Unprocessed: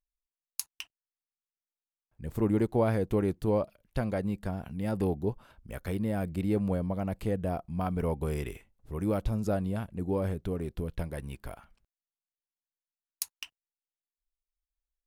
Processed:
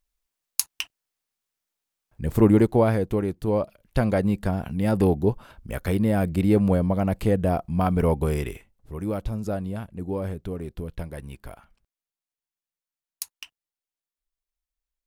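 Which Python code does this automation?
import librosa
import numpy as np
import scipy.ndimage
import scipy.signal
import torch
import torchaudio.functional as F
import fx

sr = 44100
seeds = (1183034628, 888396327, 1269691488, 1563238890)

y = fx.gain(x, sr, db=fx.line((2.42, 11.0), (3.31, 1.5), (4.04, 9.0), (8.14, 9.0), (9.0, 1.0)))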